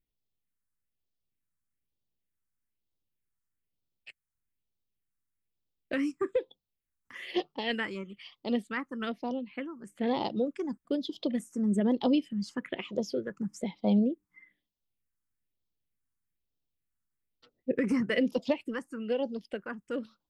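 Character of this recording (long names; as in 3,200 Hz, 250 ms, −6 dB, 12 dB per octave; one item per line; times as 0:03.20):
phaser sweep stages 4, 1.1 Hz, lowest notch 580–1,700 Hz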